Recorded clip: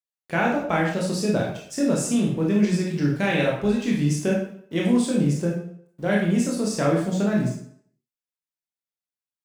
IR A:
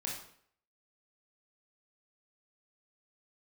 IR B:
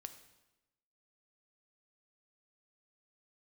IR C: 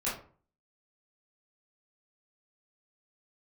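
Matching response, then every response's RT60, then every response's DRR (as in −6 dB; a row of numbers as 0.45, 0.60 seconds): A; 0.60, 1.0, 0.45 seconds; −3.0, 8.5, −9.5 decibels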